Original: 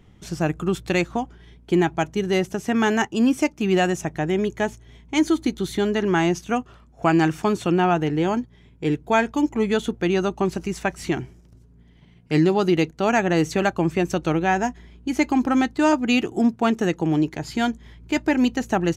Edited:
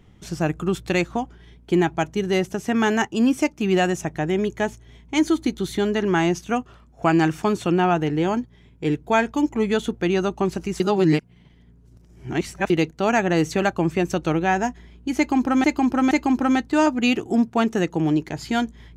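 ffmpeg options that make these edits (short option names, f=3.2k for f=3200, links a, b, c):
-filter_complex "[0:a]asplit=5[a][b][c][d][e];[a]atrim=end=10.802[f];[b]atrim=start=10.798:end=12.702,asetpts=PTS-STARTPTS,areverse[g];[c]atrim=start=12.698:end=15.642[h];[d]atrim=start=15.168:end=15.642[i];[e]atrim=start=15.168[j];[f][g]acrossfade=d=0.004:c1=hsin:c2=hsin[k];[k][h]acrossfade=d=0.004:c1=hsin:c2=hsin[l];[l][i]acrossfade=d=0.004:c1=hsin:c2=hsin[m];[m][j]acrossfade=d=0.004:c1=hsin:c2=hsin"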